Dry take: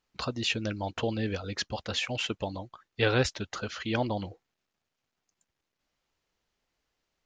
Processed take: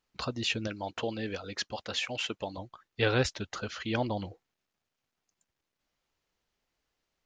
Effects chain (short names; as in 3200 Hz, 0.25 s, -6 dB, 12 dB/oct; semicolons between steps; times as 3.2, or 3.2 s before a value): 0.67–2.58 low shelf 150 Hz -11.5 dB; gain -1.5 dB